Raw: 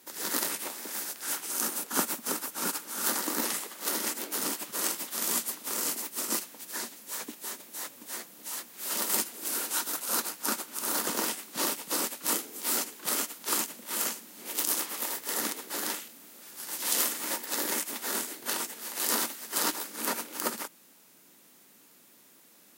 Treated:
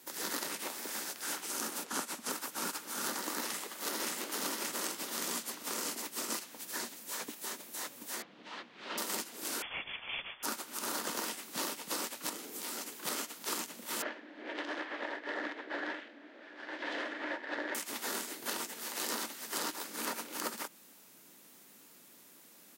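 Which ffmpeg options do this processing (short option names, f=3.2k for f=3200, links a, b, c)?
-filter_complex "[0:a]asettb=1/sr,asplit=3[a][b][c];[a]atrim=end=1.854[d];[b]atrim=start=1.85:end=2.3,asetpts=PTS-STARTPTS,afade=t=in:d=0.004:c=qsin,afade=t=out:st=0.446:d=0.004:c=qsin,lowpass=11k[e];[c]atrim=start=2.296[f];[d][e]acrossfade=d=0.004:c1=hsin:c2=qsin[g];[g][f]acrossfade=d=0.004:c1=qsin:c2=hsin,asplit=2[h][i];[i]afade=t=in:st=3.41:d=0.01,afade=t=out:st=4.2:d=0.01,aecho=0:1:580|1160|1740|2320:0.944061|0.283218|0.0849655|0.0254896[j];[h][j]amix=inputs=2:normalize=0,asettb=1/sr,asplit=3[k][l][m];[k]atrim=end=8.224[n];[l]atrim=start=8.22:end=8.98,asetpts=PTS-STARTPTS,afade=t=in:d=0.004:c=qsin,afade=t=out:st=0.756:d=0.004:c=qsin,lowpass=f=3.6k:w=0.5412,lowpass=f=3.6k:w=1.3066[o];[m]atrim=start=8.976[p];[n][o]acrossfade=d=0.004:c1=hsin:c2=qsin[q];[q][p]acrossfade=d=0.004:c1=qsin:c2=hsin,asettb=1/sr,asplit=3[r][s][t];[r]atrim=end=9.624[u];[s]atrim=start=9.62:end=10.43,asetpts=PTS-STARTPTS,afade=t=in:d=0.004:c=qsin,afade=t=out:st=0.806:d=0.004:c=qsin,lowpass=f=3.1k:t=q:w=0.5098,lowpass=f=3.1k:t=q:w=0.6013,lowpass=f=3.1k:t=q:w=0.9,lowpass=f=3.1k:t=q:w=2.563,afreqshift=-3700[v];[t]atrim=start=10.426[w];[u][v]acrossfade=d=0.004:c1=hsin:c2=qsin[x];[x][w]acrossfade=d=0.004:c1=qsin:c2=hsin,asettb=1/sr,asplit=3[y][z][aa];[y]atrim=end=12.294[ab];[z]atrim=start=12.29:end=12.96,asetpts=PTS-STARTPTS,afade=t=in:d=0.004:c=qsin,afade=t=out:st=0.666:d=0.004:c=qsin,acompressor=threshold=-34dB:ratio=5:attack=3.2:release=140:knee=1:detection=peak[ac];[aa]atrim=start=12.956[ad];[ab][ac]acrossfade=d=0.004:c1=hsin:c2=qsin[ae];[ae][ad]acrossfade=d=0.004:c1=qsin:c2=hsin,asettb=1/sr,asplit=3[af][ag][ah];[af]atrim=end=14.024[ai];[ag]atrim=start=14.02:end=17.75,asetpts=PTS-STARTPTS,afade=t=in:d=0.004:c=qsin,afade=t=out:st=3.726:d=0.004:c=qsin,highpass=f=260:w=0.5412,highpass=f=260:w=1.3066,equalizer=f=300:t=q:w=4:g=9,equalizer=f=610:t=q:w=4:g=9,equalizer=f=1.2k:t=q:w=4:g=-3,equalizer=f=1.7k:t=q:w=4:g=9,equalizer=f=2.7k:t=q:w=4:g=-3,lowpass=f=3.1k:w=0.5412,lowpass=f=3.1k:w=1.3066[aj];[ah]atrim=start=17.746[ak];[ai][aj]acrossfade=d=0.004:c1=hsin:c2=qsin[al];[al][ak]acrossfade=d=0.004:c1=qsin:c2=hsin,acrossover=split=640|7000[am][an][ao];[am]acompressor=threshold=-43dB:ratio=4[ap];[an]acompressor=threshold=-37dB:ratio=4[aq];[ao]acompressor=threshold=-43dB:ratio=4[ar];[ap][aq][ar]amix=inputs=3:normalize=0"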